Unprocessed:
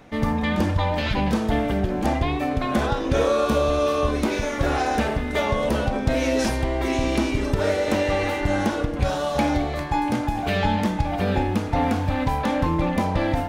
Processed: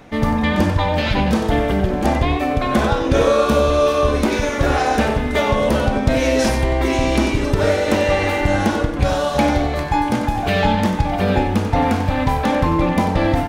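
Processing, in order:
slap from a distant wall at 16 metres, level −9 dB
level +5 dB

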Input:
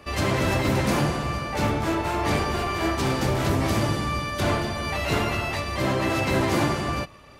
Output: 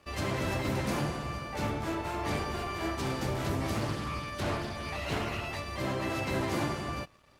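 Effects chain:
dead-zone distortion −53 dBFS
0:03.74–0:05.48: highs frequency-modulated by the lows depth 0.31 ms
level −8.5 dB

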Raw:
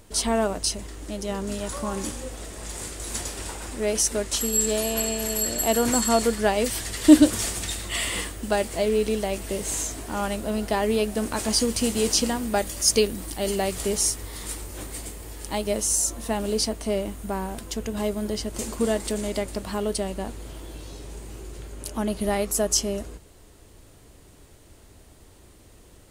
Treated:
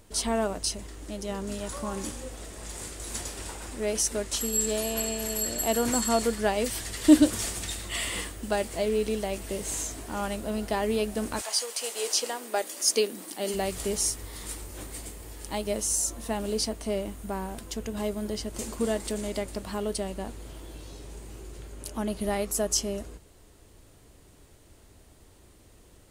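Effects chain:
0:11.40–0:13.53: high-pass filter 670 Hz → 180 Hz 24 dB per octave
level −4 dB

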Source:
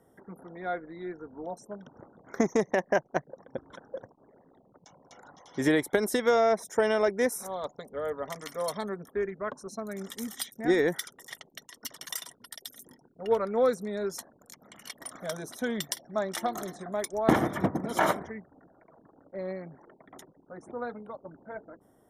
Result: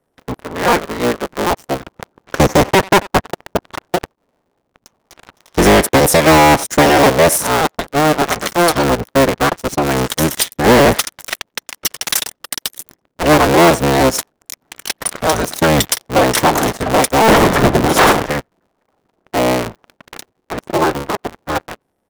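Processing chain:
sub-harmonics by changed cycles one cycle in 3, inverted
far-end echo of a speakerphone 90 ms, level −23 dB
leveller curve on the samples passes 5
level +3.5 dB

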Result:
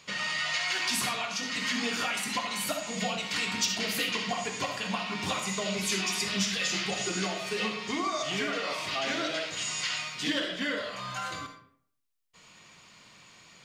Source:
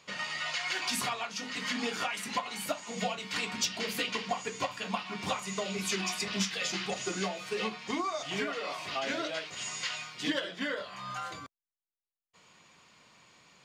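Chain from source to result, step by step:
parametric band 660 Hz −5 dB 2.6 octaves
in parallel at 0 dB: brickwall limiter −30.5 dBFS, peak gain reduction 10.5 dB
on the sum: convolution reverb RT60 0.60 s, pre-delay 20 ms, DRR 4.5 dB

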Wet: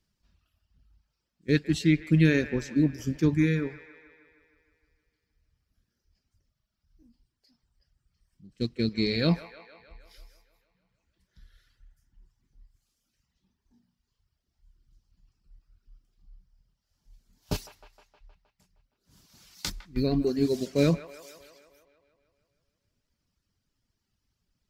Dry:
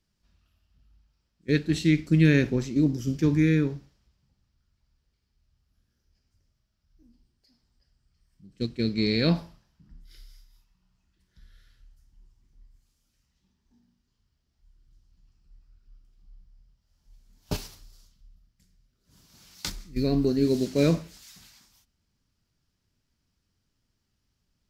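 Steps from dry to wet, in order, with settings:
reverb reduction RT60 1.2 s
delay with a band-pass on its return 156 ms, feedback 64%, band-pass 1,300 Hz, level −11.5 dB

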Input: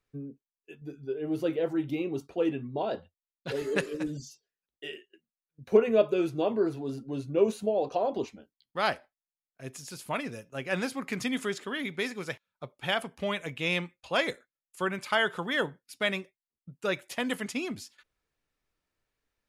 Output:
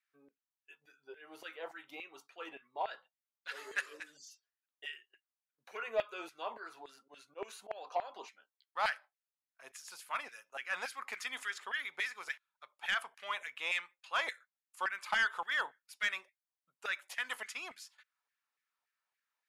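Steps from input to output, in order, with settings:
0:07.00–0:07.71: volume swells 109 ms
auto-filter high-pass saw down 3.5 Hz 770–1,900 Hz
soft clipping −16.5 dBFS, distortion −16 dB
level −6.5 dB

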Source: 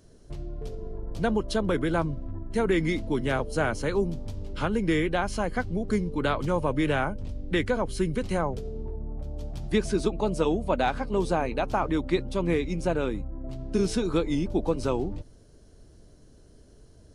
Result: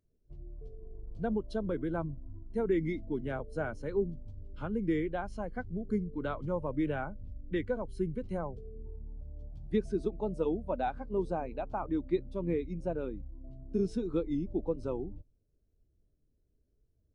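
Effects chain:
every bin expanded away from the loudest bin 1.5 to 1
level −7 dB

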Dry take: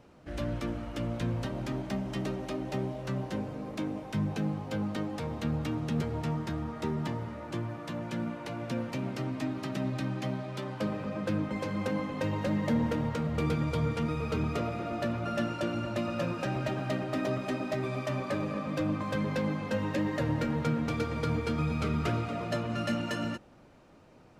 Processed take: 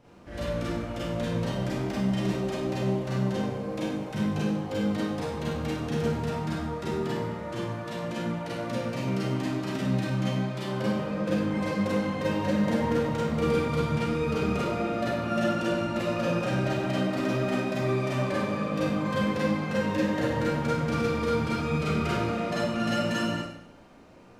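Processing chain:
four-comb reverb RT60 0.72 s, combs from 32 ms, DRR −7 dB
level −2.5 dB

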